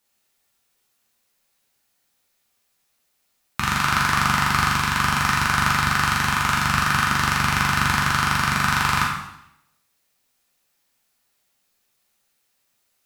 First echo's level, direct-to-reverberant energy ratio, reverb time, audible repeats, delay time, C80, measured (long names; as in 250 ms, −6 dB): no echo audible, −3.5 dB, 0.85 s, no echo audible, no echo audible, 5.5 dB